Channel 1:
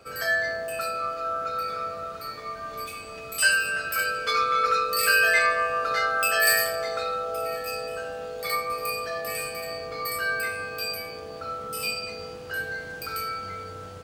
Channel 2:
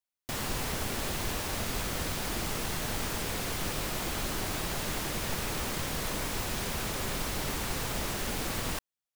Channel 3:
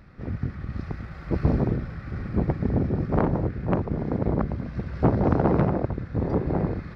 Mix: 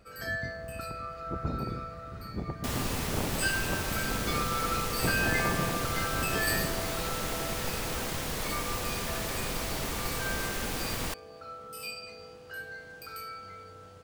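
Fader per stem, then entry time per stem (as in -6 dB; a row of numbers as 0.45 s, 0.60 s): -10.0 dB, -0.5 dB, -12.0 dB; 0.00 s, 2.35 s, 0.00 s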